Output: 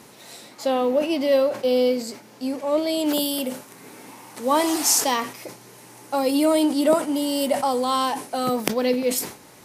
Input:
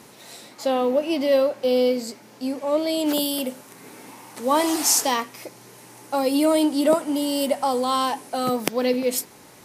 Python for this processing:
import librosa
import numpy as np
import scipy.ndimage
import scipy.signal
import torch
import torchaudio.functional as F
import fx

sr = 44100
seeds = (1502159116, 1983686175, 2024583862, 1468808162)

y = fx.sustainer(x, sr, db_per_s=130.0)